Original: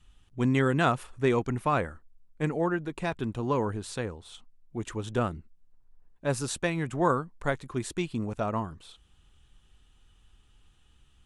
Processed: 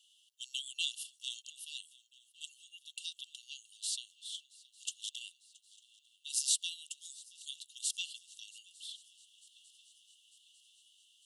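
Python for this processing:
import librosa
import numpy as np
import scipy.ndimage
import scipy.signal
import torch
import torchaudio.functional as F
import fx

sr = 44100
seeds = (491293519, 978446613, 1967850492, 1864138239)

p1 = fx.brickwall_highpass(x, sr, low_hz=2700.0)
p2 = p1 + fx.echo_swing(p1, sr, ms=899, ratio=3, feedback_pct=61, wet_db=-23, dry=0)
y = F.gain(torch.from_numpy(p2), 5.5).numpy()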